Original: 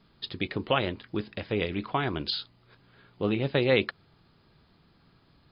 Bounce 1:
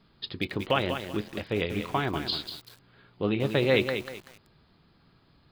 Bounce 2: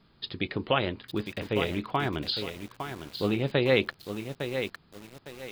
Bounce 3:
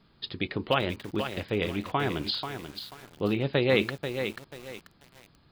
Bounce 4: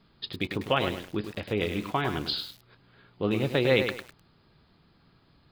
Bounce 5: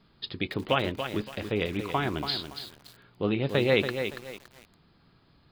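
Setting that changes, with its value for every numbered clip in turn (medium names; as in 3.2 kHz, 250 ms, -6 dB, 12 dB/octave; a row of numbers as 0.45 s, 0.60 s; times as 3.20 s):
bit-crushed delay, time: 191 ms, 857 ms, 487 ms, 102 ms, 283 ms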